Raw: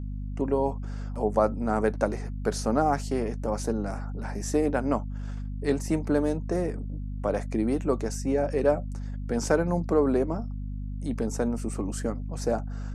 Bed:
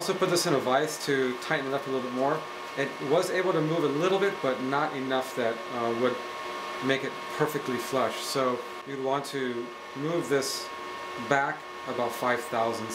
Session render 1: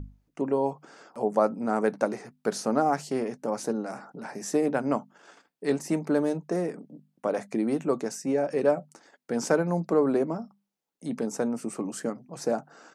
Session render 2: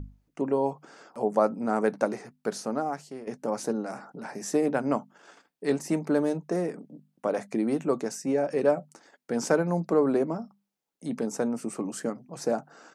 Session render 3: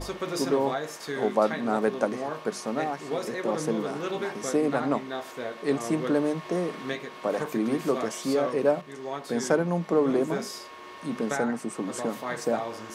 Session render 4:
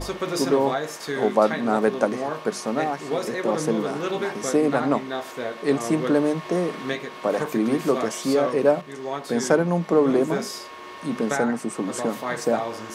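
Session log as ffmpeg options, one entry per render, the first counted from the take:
-af "bandreject=f=50:t=h:w=6,bandreject=f=100:t=h:w=6,bandreject=f=150:t=h:w=6,bandreject=f=200:t=h:w=6,bandreject=f=250:t=h:w=6"
-filter_complex "[0:a]asplit=2[s0][s1];[s0]atrim=end=3.27,asetpts=PTS-STARTPTS,afade=t=out:st=2.15:d=1.12:silence=0.188365[s2];[s1]atrim=start=3.27,asetpts=PTS-STARTPTS,afade=t=in:d=0.004:c=hsin:silence=0.188365[s3];[s2][s3]concat=n=2:v=0:a=1"
-filter_complex "[1:a]volume=0.473[s0];[0:a][s0]amix=inputs=2:normalize=0"
-af "volume=1.68"

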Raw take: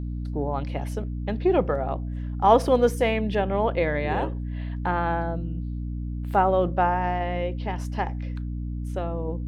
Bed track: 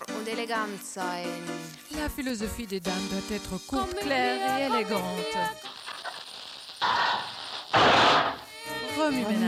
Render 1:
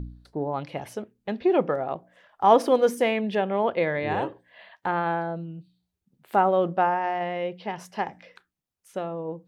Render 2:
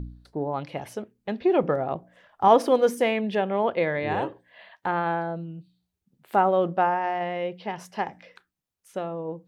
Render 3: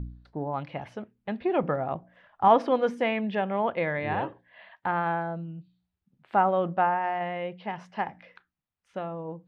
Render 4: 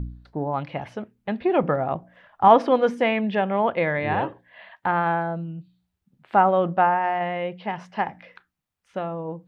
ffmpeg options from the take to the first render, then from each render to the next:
-af "bandreject=f=60:t=h:w=4,bandreject=f=120:t=h:w=4,bandreject=f=180:t=h:w=4,bandreject=f=240:t=h:w=4,bandreject=f=300:t=h:w=4"
-filter_complex "[0:a]asettb=1/sr,asplit=3[s0][s1][s2];[s0]atrim=end=1.634[s3];[s1]atrim=start=1.63:end=2.48,asetpts=PTS-STARTPTS,afade=t=in:d=0.004:c=qsin,afade=t=out:st=0.846:d=0.004:c=qsin,lowshelf=f=260:g=7.5[s4];[s2]atrim=start=2.476[s5];[s3][s4]acrossfade=d=0.004:c1=hsin:c2=qsin[s6];[s6][s5]acrossfade=d=0.004:c1=qsin:c2=hsin"
-af "lowpass=2800,equalizer=f=410:w=1.4:g=-6.5"
-af "volume=1.78"

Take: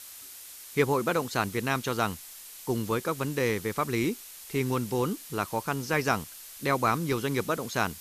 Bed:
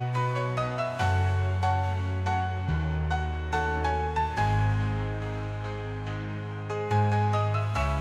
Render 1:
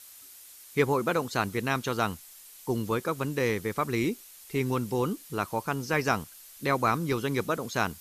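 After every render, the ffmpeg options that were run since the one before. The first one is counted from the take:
-af "afftdn=nr=6:nf=-46"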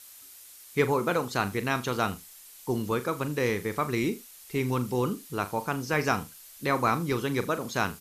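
-filter_complex "[0:a]asplit=2[s0][s1];[s1]adelay=40,volume=0.251[s2];[s0][s2]amix=inputs=2:normalize=0,aecho=1:1:80:0.0891"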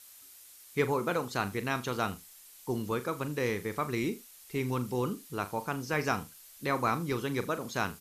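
-af "volume=0.631"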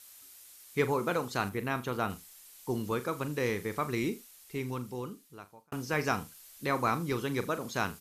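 -filter_complex "[0:a]asettb=1/sr,asplit=3[s0][s1][s2];[s0]atrim=end=1.494[s3];[s1]atrim=start=1.49:end=2.1,asetpts=PTS-STARTPTS,afade=t=in:d=0.004:c=qsin,afade=t=out:st=0.606:d=0.004:c=qsin,equalizer=f=5500:w=0.7:g=-8[s4];[s2]atrim=start=2.096[s5];[s3][s4]acrossfade=d=0.004:c1=hsin:c2=qsin[s6];[s6][s5]acrossfade=d=0.004:c1=qsin:c2=hsin,asplit=2[s7][s8];[s7]atrim=end=5.72,asetpts=PTS-STARTPTS,afade=t=out:st=4.08:d=1.64[s9];[s8]atrim=start=5.72,asetpts=PTS-STARTPTS,afade=t=in:d=0.004:c=hsin[s10];[s9][s10]concat=n=2:v=0:a=1"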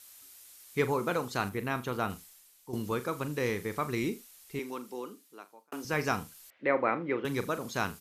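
-filter_complex "[0:a]asettb=1/sr,asplit=3[s0][s1][s2];[s0]atrim=end=4.594[s3];[s1]atrim=start=4.59:end=5.85,asetpts=PTS-STARTPTS,afade=t=in:d=0.004:c=qsin,afade=t=out:st=1.256:d=0.004:c=qsin,highpass=f=250:w=0.5412,highpass=f=250:w=1.3066[s4];[s2]atrim=start=5.846[s5];[s3][s4]acrossfade=d=0.004:c1=hsin:c2=qsin[s6];[s6][s5]acrossfade=d=0.004:c1=qsin:c2=hsin,asettb=1/sr,asplit=3[s7][s8][s9];[s7]atrim=end=6.504[s10];[s8]atrim=start=6.5:end=7.25,asetpts=PTS-STARTPTS,afade=t=in:d=0.004:c=qsin,afade=t=out:st=0.746:d=0.004:c=qsin,highpass=240,equalizer=f=310:t=q:w=4:g=4,equalizer=f=550:t=q:w=4:g=9,equalizer=f=1100:t=q:w=4:g=-4,equalizer=f=2000:t=q:w=4:g=7,lowpass=f=2600:w=0.5412,lowpass=f=2600:w=1.3066[s11];[s9]atrim=start=7.246[s12];[s10][s11]acrossfade=d=0.004:c1=hsin:c2=qsin[s13];[s13][s12]acrossfade=d=0.004:c1=qsin:c2=hsin,asplit=2[s14][s15];[s14]atrim=end=2.73,asetpts=PTS-STARTPTS,afade=t=out:st=2.22:d=0.51:c=qua:silence=0.316228[s16];[s15]atrim=start=2.73,asetpts=PTS-STARTPTS,afade=t=in:d=0.004:c=hsin:silence=0.316228[s17];[s16][s17]concat=n=2:v=0:a=1"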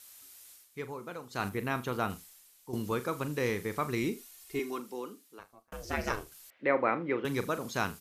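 -filter_complex "[0:a]asettb=1/sr,asplit=3[s0][s1][s2];[s0]atrim=end=4.174[s3];[s1]atrim=start=4.17:end=4.8,asetpts=PTS-STARTPTS,afade=t=in:d=0.004:c=qsin,afade=t=out:st=0.626:d=0.004:c=qsin,aecho=1:1:2.8:0.73,atrim=end_sample=27783[s4];[s2]atrim=start=4.796[s5];[s3][s4]acrossfade=d=0.004:c1=hsin:c2=qsin[s6];[s6][s5]acrossfade=d=0.004:c1=qsin:c2=hsin,asettb=1/sr,asplit=3[s7][s8][s9];[s7]atrim=end=5.394[s10];[s8]atrim=start=5.39:end=6.32,asetpts=PTS-STARTPTS,afade=t=in:d=0.004:c=qsin,afade=t=out:st=0.926:d=0.004:c=qsin,aeval=exprs='val(0)*sin(2*PI*220*n/s)':c=same[s11];[s9]atrim=start=6.316[s12];[s10][s11]acrossfade=d=0.004:c1=hsin:c2=qsin[s13];[s13][s12]acrossfade=d=0.004:c1=qsin:c2=hsin,asplit=3[s14][s15][s16];[s14]atrim=end=0.69,asetpts=PTS-STARTPTS,afade=t=out:st=0.52:d=0.17:silence=0.266073[s17];[s15]atrim=start=0.69:end=1.29,asetpts=PTS-STARTPTS,volume=0.266[s18];[s16]atrim=start=1.29,asetpts=PTS-STARTPTS,afade=t=in:d=0.17:silence=0.266073[s19];[s17][s18][s19]concat=n=3:v=0:a=1"

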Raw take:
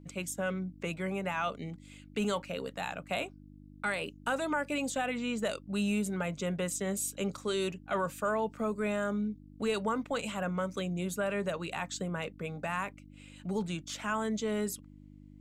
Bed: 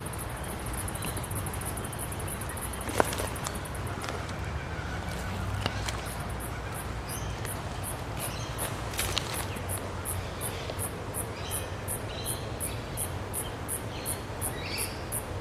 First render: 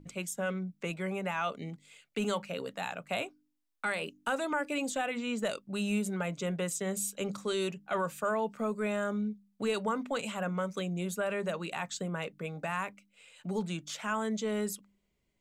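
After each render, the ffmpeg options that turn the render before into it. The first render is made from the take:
-af "bandreject=f=50:t=h:w=4,bandreject=f=100:t=h:w=4,bandreject=f=150:t=h:w=4,bandreject=f=200:t=h:w=4,bandreject=f=250:t=h:w=4,bandreject=f=300:t=h:w=4"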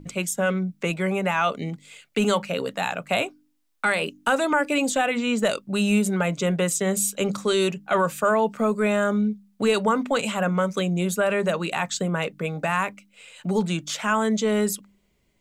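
-af "volume=3.35"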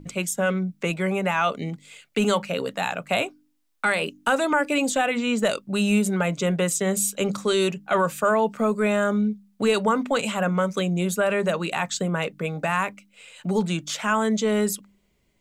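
-af anull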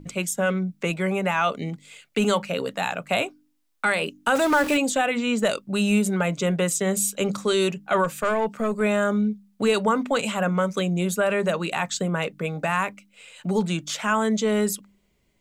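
-filter_complex "[0:a]asettb=1/sr,asplit=3[s0][s1][s2];[s0]atrim=end=4.354[s3];[s1]atrim=start=4.35:end=4.77,asetpts=PTS-STARTPTS,afade=t=in:d=0.004:c=qsin,afade=t=out:st=0.416:d=0.004:c=qsin,aeval=exprs='val(0)+0.5*0.0562*sgn(val(0))':c=same[s4];[s2]atrim=start=4.766[s5];[s3][s4]acrossfade=d=0.004:c1=hsin:c2=qsin[s6];[s6][s5]acrossfade=d=0.004:c1=qsin:c2=hsin,asettb=1/sr,asplit=3[s7][s8][s9];[s7]atrim=end=8.044[s10];[s8]atrim=start=8.04:end=8.81,asetpts=PTS-STARTPTS,afade=t=in:d=0.004:c=qsin,afade=t=out:st=0.766:d=0.004:c=qsin,aeval=exprs='(tanh(6.31*val(0)+0.35)-tanh(0.35))/6.31':c=same[s11];[s9]atrim=start=8.806[s12];[s10][s11]acrossfade=d=0.004:c1=hsin:c2=qsin[s13];[s13][s12]acrossfade=d=0.004:c1=qsin:c2=hsin"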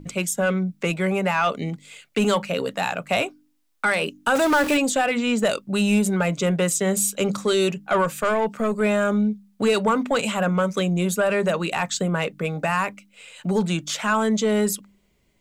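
-af "aeval=exprs='0.398*(cos(1*acos(clip(val(0)/0.398,-1,1)))-cos(1*PI/2))+0.0251*(cos(5*acos(clip(val(0)/0.398,-1,1)))-cos(5*PI/2))':c=same"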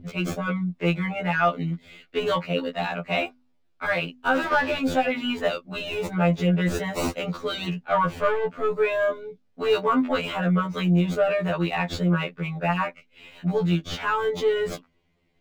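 -filter_complex "[0:a]acrossover=split=4900[s0][s1];[s1]acrusher=samples=37:mix=1:aa=0.000001:lfo=1:lforange=22.2:lforate=1.1[s2];[s0][s2]amix=inputs=2:normalize=0,afftfilt=real='re*2*eq(mod(b,4),0)':imag='im*2*eq(mod(b,4),0)':win_size=2048:overlap=0.75"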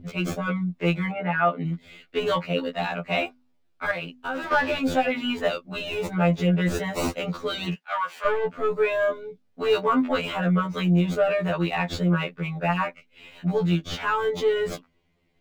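-filter_complex "[0:a]asplit=3[s0][s1][s2];[s0]afade=t=out:st=1.11:d=0.02[s3];[s1]highpass=120,lowpass=2200,afade=t=in:st=1.11:d=0.02,afade=t=out:st=1.64:d=0.02[s4];[s2]afade=t=in:st=1.64:d=0.02[s5];[s3][s4][s5]amix=inputs=3:normalize=0,asettb=1/sr,asplit=3[s6][s7][s8];[s6]atrim=end=3.914[s9];[s7]atrim=start=3.91:end=4.51,asetpts=PTS-STARTPTS,afade=t=in:d=0.004:c=qsin,afade=t=out:st=0.596:d=0.004:c=qsin,acompressor=threshold=0.0251:ratio=2:attack=3.2:release=140:knee=1:detection=peak[s10];[s8]atrim=start=4.506[s11];[s9][s10]acrossfade=d=0.004:c1=hsin:c2=qsin[s12];[s12][s11]acrossfade=d=0.004:c1=qsin:c2=hsin,asplit=3[s13][s14][s15];[s13]afade=t=out:st=7.74:d=0.02[s16];[s14]highpass=1200,afade=t=in:st=7.74:d=0.02,afade=t=out:st=8.24:d=0.02[s17];[s15]afade=t=in:st=8.24:d=0.02[s18];[s16][s17][s18]amix=inputs=3:normalize=0"

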